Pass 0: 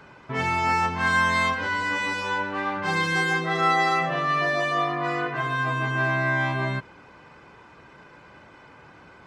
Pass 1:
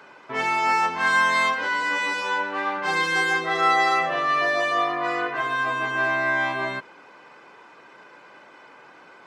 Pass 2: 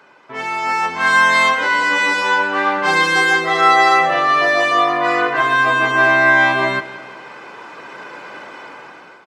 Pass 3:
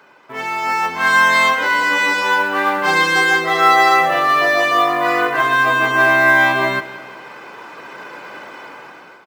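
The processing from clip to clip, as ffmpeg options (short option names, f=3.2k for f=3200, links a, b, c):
-af "highpass=340,volume=2dB"
-af "dynaudnorm=f=380:g=5:m=15.5dB,aecho=1:1:174|348|522|696|870:0.168|0.089|0.0472|0.025|0.0132,volume=-1dB"
-af "acrusher=bits=7:mode=log:mix=0:aa=0.000001"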